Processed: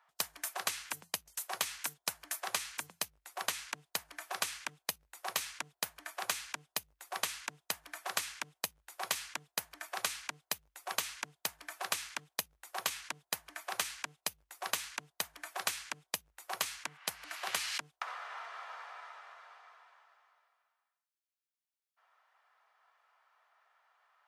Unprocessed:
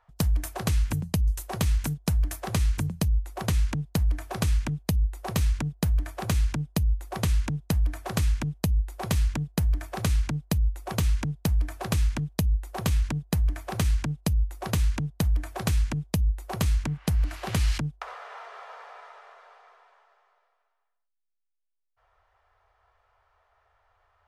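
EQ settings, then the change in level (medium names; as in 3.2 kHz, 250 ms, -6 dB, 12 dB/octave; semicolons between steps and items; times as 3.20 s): high-pass 980 Hz 12 dB/octave; 0.0 dB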